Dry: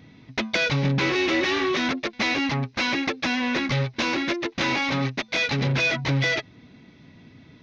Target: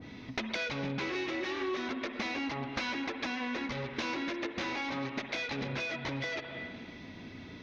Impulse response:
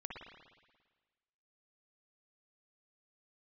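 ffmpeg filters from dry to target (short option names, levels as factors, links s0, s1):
-filter_complex "[0:a]acontrast=23,alimiter=limit=0.141:level=0:latency=1:release=475,equalizer=f=140:w=2.4:g=-10.5,asplit=2[s0][s1];[1:a]atrim=start_sample=2205[s2];[s1][s2]afir=irnorm=-1:irlink=0,volume=0.891[s3];[s0][s3]amix=inputs=2:normalize=0,acompressor=threshold=0.0355:ratio=5,adynamicequalizer=threshold=0.01:dfrequency=1800:dqfactor=0.7:tfrequency=1800:tqfactor=0.7:attack=5:release=100:ratio=0.375:range=2:mode=cutabove:tftype=highshelf,volume=0.668"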